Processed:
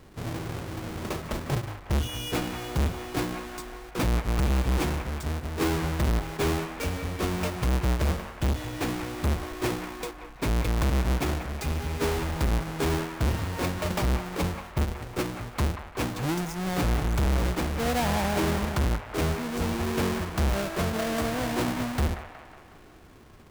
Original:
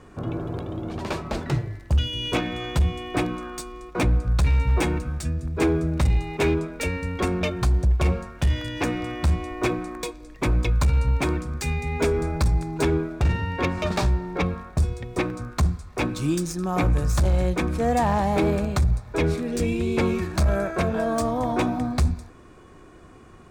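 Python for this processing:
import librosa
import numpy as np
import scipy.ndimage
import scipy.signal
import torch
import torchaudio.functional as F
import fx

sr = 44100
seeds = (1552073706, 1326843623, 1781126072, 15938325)

p1 = fx.halfwave_hold(x, sr)
p2 = p1 + fx.echo_wet_bandpass(p1, sr, ms=183, feedback_pct=57, hz=1300.0, wet_db=-7, dry=0)
y = p2 * librosa.db_to_amplitude(-8.5)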